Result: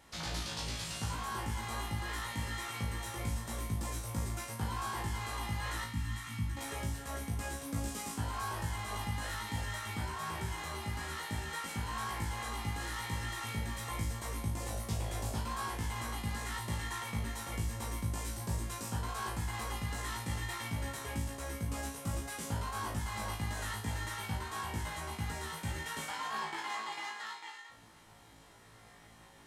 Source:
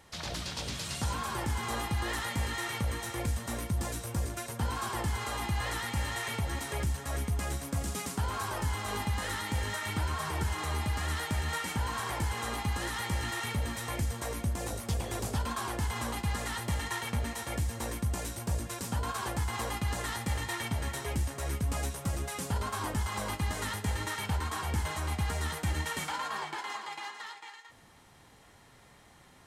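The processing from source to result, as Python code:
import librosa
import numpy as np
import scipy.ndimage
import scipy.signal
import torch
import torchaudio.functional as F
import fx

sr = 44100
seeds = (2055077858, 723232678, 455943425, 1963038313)

y = fx.curve_eq(x, sr, hz=(270.0, 470.0, 1100.0), db=(0, -27, -8), at=(5.84, 6.57))
y = fx.rider(y, sr, range_db=4, speed_s=0.5)
y = fx.comb_fb(y, sr, f0_hz=55.0, decay_s=0.38, harmonics='all', damping=0.0, mix_pct=100)
y = y * 10.0 ** (4.0 / 20.0)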